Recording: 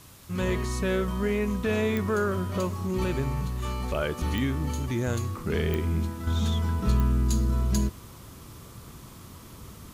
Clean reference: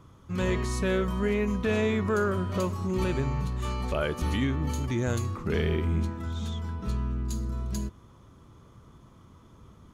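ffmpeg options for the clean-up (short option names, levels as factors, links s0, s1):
-af "adeclick=t=4,afwtdn=0.0025,asetnsamples=n=441:p=0,asendcmd='6.27 volume volume -7dB',volume=1"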